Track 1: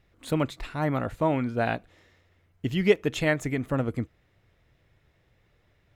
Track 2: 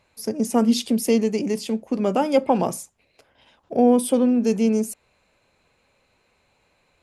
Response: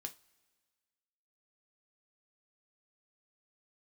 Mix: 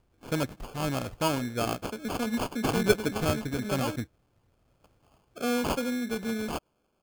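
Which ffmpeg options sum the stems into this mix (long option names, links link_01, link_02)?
-filter_complex "[0:a]lowpass=4100,volume=-3dB[link_01];[1:a]adelay=1650,volume=-11.5dB,asplit=3[link_02][link_03][link_04];[link_02]atrim=end=3.96,asetpts=PTS-STARTPTS,afade=type=out:start_time=3.956:duration=0.004:curve=hsin[link_05];[link_03]atrim=start=3.96:end=4.67,asetpts=PTS-STARTPTS,volume=0[link_06];[link_04]atrim=start=4.67,asetpts=PTS-STARTPTS,afade=type=in:duration=0.004:curve=hsin[link_07];[link_05][link_06][link_07]concat=n=3:v=0:a=1[link_08];[link_01][link_08]amix=inputs=2:normalize=0,aemphasis=mode=production:type=75fm,acrusher=samples=23:mix=1:aa=0.000001"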